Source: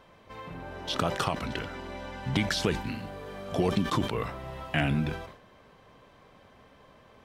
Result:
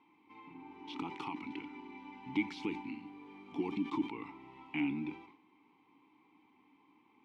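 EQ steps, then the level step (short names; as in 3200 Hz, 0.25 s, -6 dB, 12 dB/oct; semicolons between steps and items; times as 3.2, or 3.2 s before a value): vowel filter u; low shelf 170 Hz -9.5 dB; bell 610 Hz -13.5 dB 0.5 oct; +5.5 dB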